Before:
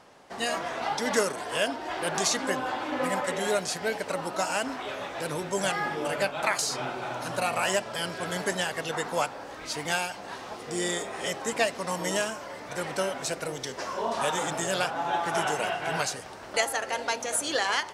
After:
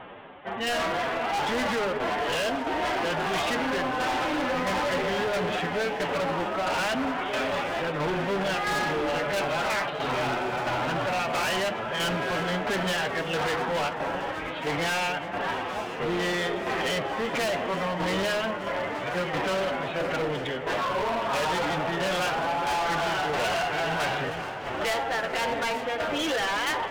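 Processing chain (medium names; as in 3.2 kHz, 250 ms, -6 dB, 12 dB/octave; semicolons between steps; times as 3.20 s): steep low-pass 3.4 kHz 72 dB/octave; de-hum 70.15 Hz, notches 17; in parallel at -0.5 dB: peak limiter -20.5 dBFS, peak gain reduction 9.5 dB; on the sum: time stretch by phase-locked vocoder 1.5×; tremolo saw down 1.5 Hz, depth 65%; overload inside the chain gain 32.5 dB; on a send: echo whose repeats swap between lows and highs 436 ms, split 2.1 kHz, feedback 78%, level -11 dB; on the sum: trim +7 dB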